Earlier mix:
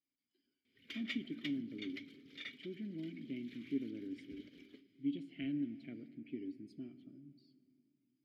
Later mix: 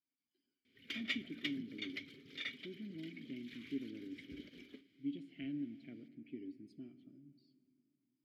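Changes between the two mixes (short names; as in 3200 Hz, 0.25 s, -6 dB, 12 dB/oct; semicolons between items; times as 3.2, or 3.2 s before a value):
speech -3.5 dB; background +4.5 dB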